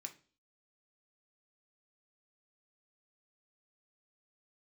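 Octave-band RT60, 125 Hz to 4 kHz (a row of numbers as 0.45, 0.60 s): 0.45, 0.50, 0.45, 0.35, 0.35, 0.45 s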